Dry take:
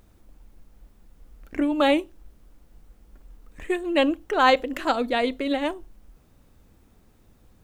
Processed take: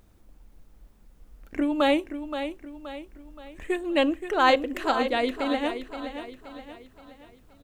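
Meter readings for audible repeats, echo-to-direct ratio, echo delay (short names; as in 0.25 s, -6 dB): 4, -8.5 dB, 0.524 s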